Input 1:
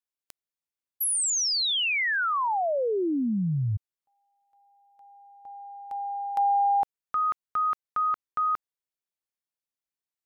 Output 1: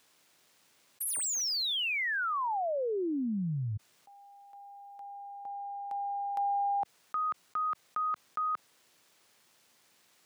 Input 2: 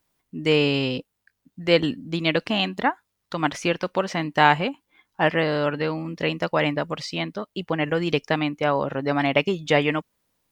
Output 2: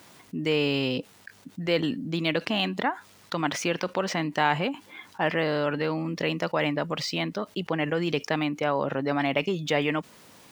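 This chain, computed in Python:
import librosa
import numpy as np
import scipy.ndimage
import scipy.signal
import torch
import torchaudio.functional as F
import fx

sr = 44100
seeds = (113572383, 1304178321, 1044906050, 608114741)

y = scipy.ndimage.median_filter(x, 3, mode='constant')
y = scipy.signal.sosfilt(scipy.signal.butter(2, 120.0, 'highpass', fs=sr, output='sos'), y)
y = fx.env_flatten(y, sr, amount_pct=50)
y = F.gain(torch.from_numpy(y), -7.5).numpy()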